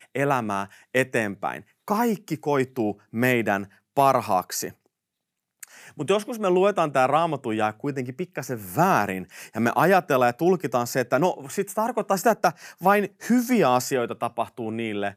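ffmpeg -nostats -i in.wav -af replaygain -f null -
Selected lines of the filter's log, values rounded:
track_gain = +3.4 dB
track_peak = 0.341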